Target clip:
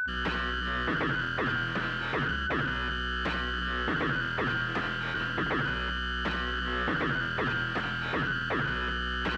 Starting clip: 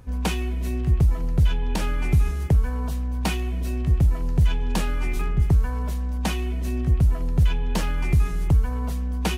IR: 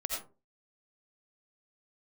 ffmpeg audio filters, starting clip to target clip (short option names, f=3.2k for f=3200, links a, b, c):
-filter_complex "[0:a]afftdn=nr=23:nf=-29,acrossover=split=560|990[a][b][c];[b]acompressor=threshold=-52dB:ratio=20[d];[c]volume=31.5dB,asoftclip=hard,volume=-31.5dB[e];[a][d][e]amix=inputs=3:normalize=0,aeval=exprs='val(0)+0.0447*sin(2*PI*1500*n/s)':c=same,aeval=exprs='0.0708*(abs(mod(val(0)/0.0708+3,4)-2)-1)':c=same,highpass=110,lowpass=3.2k,asplit=2[f][g];[g]aecho=0:1:83|166|249:0.335|0.0938|0.0263[h];[f][h]amix=inputs=2:normalize=0"